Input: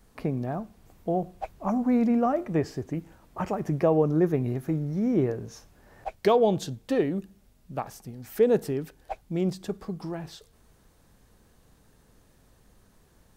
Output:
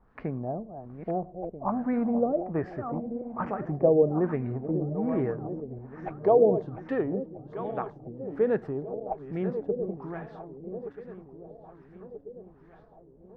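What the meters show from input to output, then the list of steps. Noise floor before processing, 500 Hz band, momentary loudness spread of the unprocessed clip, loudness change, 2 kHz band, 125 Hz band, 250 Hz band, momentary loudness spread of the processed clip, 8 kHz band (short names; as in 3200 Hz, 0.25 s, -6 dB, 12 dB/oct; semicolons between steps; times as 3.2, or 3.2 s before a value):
-61 dBFS, +0.5 dB, 16 LU, -2.0 dB, -2.5 dB, -3.5 dB, -3.0 dB, 21 LU, under -30 dB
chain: regenerating reverse delay 0.643 s, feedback 68%, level -10 dB; LFO low-pass sine 1.2 Hz 490–1800 Hz; gain -4.5 dB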